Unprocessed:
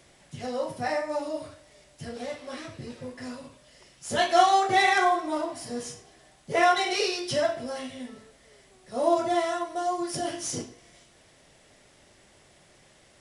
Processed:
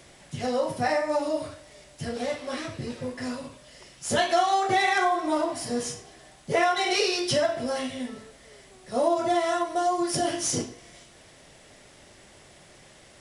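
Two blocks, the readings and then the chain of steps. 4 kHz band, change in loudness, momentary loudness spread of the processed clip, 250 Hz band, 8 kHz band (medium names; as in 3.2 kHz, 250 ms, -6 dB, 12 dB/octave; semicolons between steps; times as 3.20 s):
+1.5 dB, 0.0 dB, 15 LU, +3.0 dB, +4.0 dB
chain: compression 4:1, threshold -26 dBFS, peak gain reduction 11 dB; trim +5.5 dB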